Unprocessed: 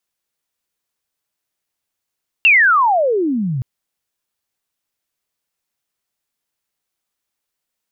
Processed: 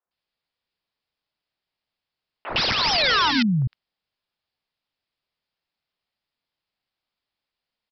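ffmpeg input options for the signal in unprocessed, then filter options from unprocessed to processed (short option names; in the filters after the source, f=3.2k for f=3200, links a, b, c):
-f lavfi -i "aevalsrc='pow(10,(-6.5-11.5*t/1.17)/20)*sin(2*PI*2800*1.17/log(120/2800)*(exp(log(120/2800)*t/1.17)-1))':d=1.17:s=44100"
-filter_complex "[0:a]aresample=11025,aeval=exprs='(mod(5.62*val(0)+1,2)-1)/5.62':c=same,aresample=44100,acrossover=split=360|1500[a][b][c];[a]adelay=50[d];[c]adelay=110[e];[d][b][e]amix=inputs=3:normalize=0"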